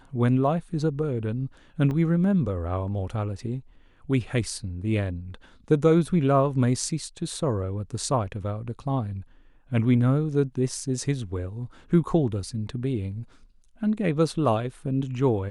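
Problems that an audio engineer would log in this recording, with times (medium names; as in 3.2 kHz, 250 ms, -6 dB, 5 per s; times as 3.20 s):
1.91 s: dropout 3.4 ms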